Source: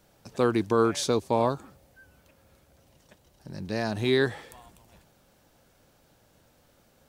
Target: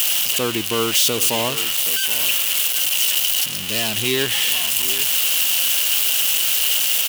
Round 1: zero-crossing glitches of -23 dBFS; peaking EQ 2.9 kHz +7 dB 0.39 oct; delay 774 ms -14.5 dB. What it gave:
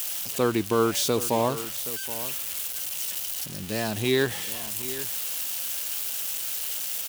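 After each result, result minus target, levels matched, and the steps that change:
zero-crossing glitches: distortion -11 dB; 4 kHz band -5.5 dB
change: zero-crossing glitches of -11.5 dBFS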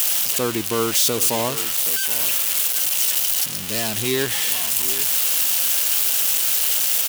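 4 kHz band -5.0 dB
change: peaking EQ 2.9 kHz +18 dB 0.39 oct

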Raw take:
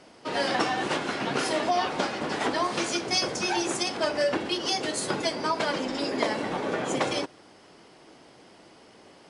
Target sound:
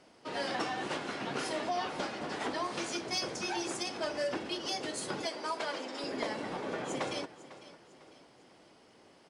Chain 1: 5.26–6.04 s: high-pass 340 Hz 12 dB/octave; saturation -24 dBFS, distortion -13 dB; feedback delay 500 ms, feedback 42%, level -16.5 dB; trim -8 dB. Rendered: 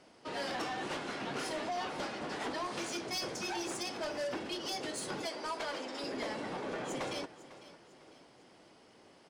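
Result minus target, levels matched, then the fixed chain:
saturation: distortion +13 dB
5.26–6.04 s: high-pass 340 Hz 12 dB/octave; saturation -14 dBFS, distortion -26 dB; feedback delay 500 ms, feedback 42%, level -16.5 dB; trim -8 dB

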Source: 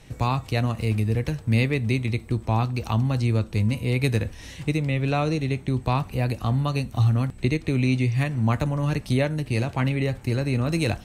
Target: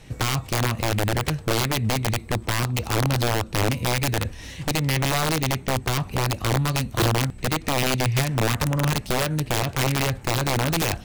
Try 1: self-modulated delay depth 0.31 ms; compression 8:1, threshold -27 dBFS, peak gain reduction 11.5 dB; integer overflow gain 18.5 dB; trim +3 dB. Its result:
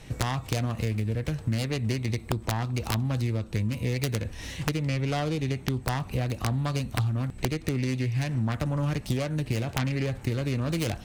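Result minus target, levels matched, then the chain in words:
compression: peak gain reduction +6 dB
self-modulated delay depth 0.31 ms; compression 8:1, threshold -20 dBFS, peak gain reduction 5.5 dB; integer overflow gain 18.5 dB; trim +3 dB

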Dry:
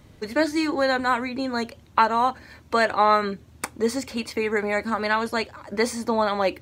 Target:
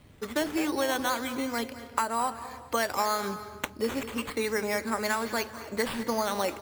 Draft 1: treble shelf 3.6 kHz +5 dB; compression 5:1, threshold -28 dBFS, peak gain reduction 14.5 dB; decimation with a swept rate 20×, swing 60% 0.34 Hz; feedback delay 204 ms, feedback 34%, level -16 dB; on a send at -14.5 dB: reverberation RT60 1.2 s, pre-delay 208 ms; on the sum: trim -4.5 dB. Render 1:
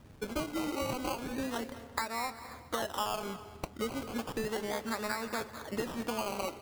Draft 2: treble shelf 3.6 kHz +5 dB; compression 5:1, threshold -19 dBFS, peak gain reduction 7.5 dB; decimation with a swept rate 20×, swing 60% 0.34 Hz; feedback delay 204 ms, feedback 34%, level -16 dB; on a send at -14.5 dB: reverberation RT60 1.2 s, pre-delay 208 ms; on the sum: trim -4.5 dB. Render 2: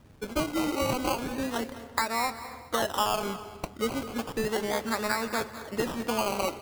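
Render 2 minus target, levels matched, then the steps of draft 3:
decimation with a swept rate: distortion +10 dB
treble shelf 3.6 kHz +5 dB; compression 5:1, threshold -19 dBFS, peak gain reduction 7.5 dB; decimation with a swept rate 7×, swing 60% 0.34 Hz; feedback delay 204 ms, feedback 34%, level -16 dB; on a send at -14.5 dB: reverberation RT60 1.2 s, pre-delay 208 ms; on the sum: trim -4.5 dB

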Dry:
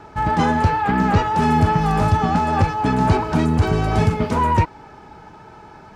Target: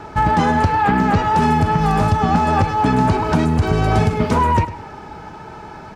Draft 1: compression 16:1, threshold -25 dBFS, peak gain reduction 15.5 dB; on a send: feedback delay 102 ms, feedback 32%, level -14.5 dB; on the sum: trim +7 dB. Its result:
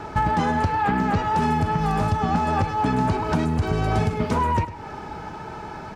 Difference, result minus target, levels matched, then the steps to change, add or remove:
compression: peak gain reduction +6 dB
change: compression 16:1, threshold -18.5 dBFS, peak gain reduction 9.5 dB

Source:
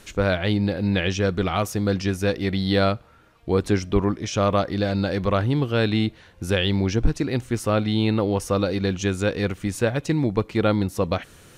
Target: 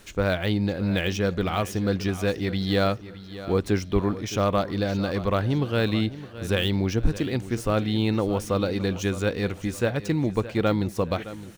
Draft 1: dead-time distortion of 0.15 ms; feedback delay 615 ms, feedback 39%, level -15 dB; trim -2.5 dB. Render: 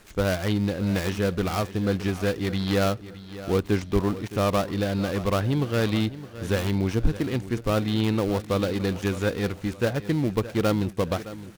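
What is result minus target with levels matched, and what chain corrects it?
dead-time distortion: distortion +17 dB
dead-time distortion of 0.028 ms; feedback delay 615 ms, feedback 39%, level -15 dB; trim -2.5 dB

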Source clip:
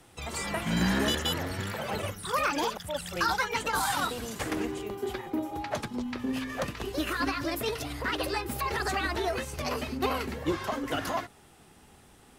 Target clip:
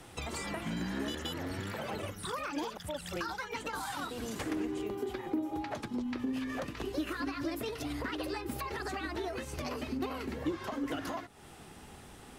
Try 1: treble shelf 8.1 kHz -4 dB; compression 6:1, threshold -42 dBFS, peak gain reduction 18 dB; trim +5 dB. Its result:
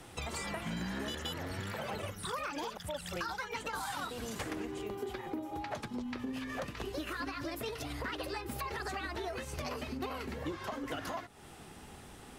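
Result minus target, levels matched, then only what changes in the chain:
250 Hz band -3.0 dB
add after compression: dynamic bell 300 Hz, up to +7 dB, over -59 dBFS, Q 2.2

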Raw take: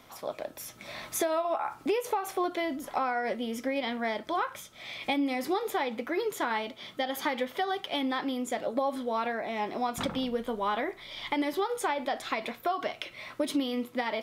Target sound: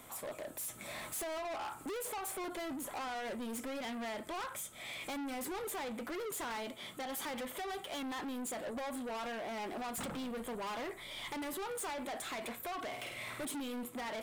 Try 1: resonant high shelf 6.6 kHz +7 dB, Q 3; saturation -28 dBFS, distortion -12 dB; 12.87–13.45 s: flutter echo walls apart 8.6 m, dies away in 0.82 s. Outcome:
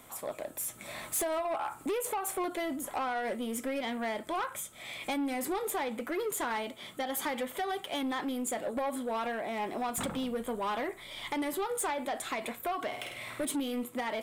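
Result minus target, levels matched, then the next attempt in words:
saturation: distortion -7 dB
resonant high shelf 6.6 kHz +7 dB, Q 3; saturation -38.5 dBFS, distortion -5 dB; 12.87–13.45 s: flutter echo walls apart 8.6 m, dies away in 0.82 s

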